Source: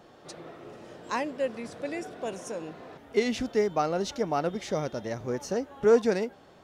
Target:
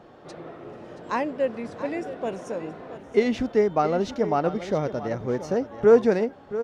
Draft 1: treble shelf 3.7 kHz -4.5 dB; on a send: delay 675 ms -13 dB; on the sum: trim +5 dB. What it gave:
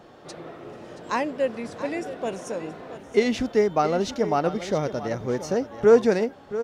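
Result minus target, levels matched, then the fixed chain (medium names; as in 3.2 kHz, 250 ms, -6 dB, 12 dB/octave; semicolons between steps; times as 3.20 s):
8 kHz band +7.0 dB
treble shelf 3.7 kHz -14.5 dB; on a send: delay 675 ms -13 dB; on the sum: trim +5 dB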